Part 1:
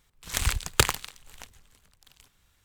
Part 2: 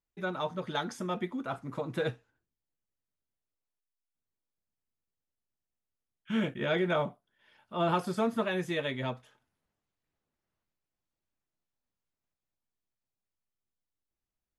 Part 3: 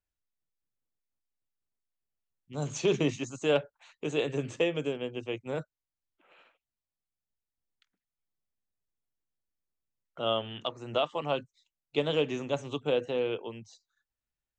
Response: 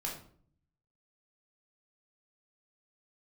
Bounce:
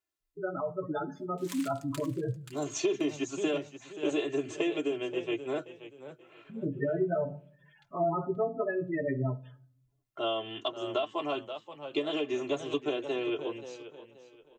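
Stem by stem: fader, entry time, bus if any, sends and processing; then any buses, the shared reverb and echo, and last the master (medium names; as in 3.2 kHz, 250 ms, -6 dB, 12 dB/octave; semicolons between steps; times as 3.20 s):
-12.5 dB, 1.15 s, no bus, no send, echo send -17.5 dB, high-pass 1.4 kHz; auto duck -23 dB, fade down 0.95 s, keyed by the third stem
-1.0 dB, 0.20 s, bus A, send -14.5 dB, no echo send, low-pass 3.6 kHz 12 dB/octave; spectral gate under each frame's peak -10 dB strong; comb 7.1 ms, depth 92%
+1.0 dB, 0.00 s, bus A, no send, echo send -13 dB, high-pass 210 Hz 12 dB/octave
bus A: 0.0 dB, comb 2.9 ms, depth 82%; compression 10:1, threshold -27 dBFS, peak gain reduction 10.5 dB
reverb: on, RT60 0.55 s, pre-delay 12 ms
echo: feedback delay 529 ms, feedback 29%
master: bass shelf 490 Hz +3.5 dB; comb of notches 240 Hz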